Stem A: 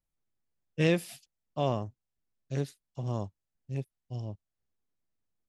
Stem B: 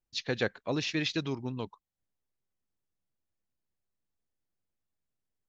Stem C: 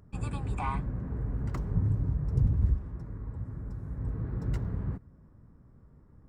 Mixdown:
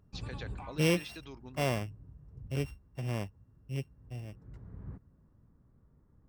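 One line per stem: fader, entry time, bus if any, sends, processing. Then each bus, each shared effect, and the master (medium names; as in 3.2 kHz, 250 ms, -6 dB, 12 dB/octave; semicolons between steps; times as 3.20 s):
4.02 s -1.5 dB -> 4.48 s -10.5 dB, 0.00 s, no send, sorted samples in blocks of 16 samples
-9.5 dB, 0.00 s, no send, tilt EQ +2 dB/octave; compression, threshold -31 dBFS, peak gain reduction 7 dB
-8.0 dB, 0.00 s, no send, auto duck -15 dB, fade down 0.20 s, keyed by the first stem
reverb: none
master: treble shelf 4 kHz -5.5 dB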